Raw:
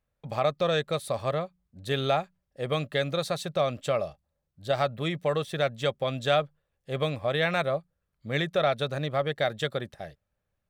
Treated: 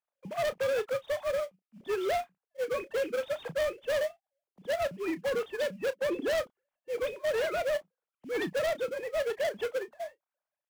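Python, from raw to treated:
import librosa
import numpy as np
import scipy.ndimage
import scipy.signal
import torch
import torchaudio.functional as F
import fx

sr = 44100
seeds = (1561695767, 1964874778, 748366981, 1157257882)

p1 = fx.sine_speech(x, sr)
p2 = fx.sample_hold(p1, sr, seeds[0], rate_hz=2700.0, jitter_pct=20)
p3 = p1 + (p2 * 10.0 ** (-8.5 / 20.0))
p4 = fx.peak_eq(p3, sr, hz=290.0, db=15.0, octaves=1.0, at=(5.97, 6.38))
p5 = np.clip(10.0 ** (27.0 / 20.0) * p4, -1.0, 1.0) / 10.0 ** (27.0 / 20.0)
y = fx.doubler(p5, sr, ms=31.0, db=-14.0)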